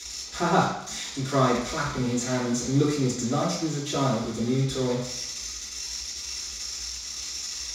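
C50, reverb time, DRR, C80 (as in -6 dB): 3.0 dB, 0.70 s, -10.0 dB, 6.5 dB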